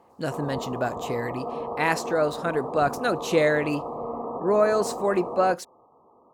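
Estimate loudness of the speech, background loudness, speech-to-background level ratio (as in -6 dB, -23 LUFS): -25.5 LUFS, -33.5 LUFS, 8.0 dB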